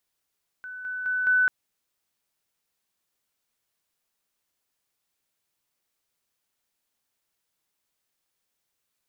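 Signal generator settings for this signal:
level staircase 1,500 Hz −35.5 dBFS, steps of 6 dB, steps 4, 0.21 s 0.00 s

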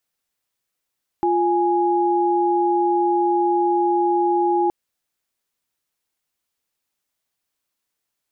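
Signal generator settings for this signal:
held notes F4/G#5 sine, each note −18.5 dBFS 3.47 s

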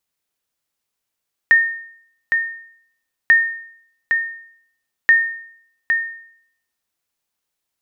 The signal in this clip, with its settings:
ping with an echo 1,830 Hz, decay 0.66 s, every 1.79 s, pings 3, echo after 0.81 s, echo −6 dB −5 dBFS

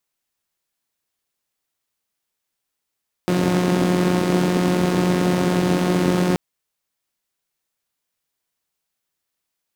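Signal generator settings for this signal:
pulse-train model of a four-cylinder engine, steady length 3.08 s, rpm 5,400, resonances 180/280 Hz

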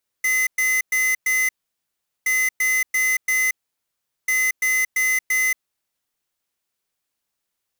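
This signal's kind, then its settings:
beeps in groups square 2,040 Hz, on 0.23 s, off 0.11 s, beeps 4, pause 0.77 s, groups 3, −19.5 dBFS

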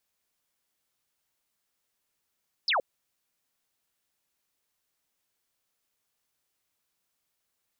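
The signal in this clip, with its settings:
single falling chirp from 5,400 Hz, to 470 Hz, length 0.12 s sine, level −22.5 dB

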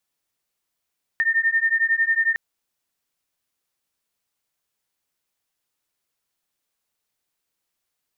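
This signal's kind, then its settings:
two tones that beat 1,810 Hz, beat 11 Hz, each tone −20.5 dBFS 1.16 s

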